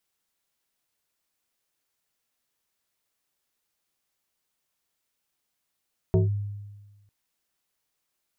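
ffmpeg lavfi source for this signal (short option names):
-f lavfi -i "aevalsrc='0.168*pow(10,-3*t/1.31)*sin(2*PI*102*t+1.3*clip(1-t/0.15,0,1)*sin(2*PI*2.66*102*t))':d=0.95:s=44100"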